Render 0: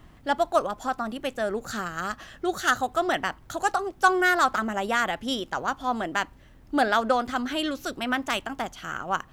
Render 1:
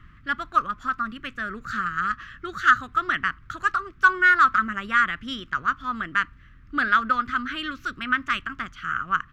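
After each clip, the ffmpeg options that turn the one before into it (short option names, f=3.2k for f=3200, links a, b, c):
-af "firequalizer=gain_entry='entry(110,0);entry(500,-19);entry(820,-25);entry(1200,5);entry(3800,-8);entry(9400,-20)':delay=0.05:min_phase=1,volume=3dB"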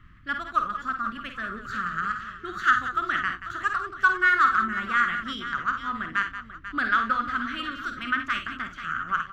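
-af "aecho=1:1:50|62|90|180|491|865:0.398|0.237|0.119|0.251|0.237|0.126,volume=-3.5dB"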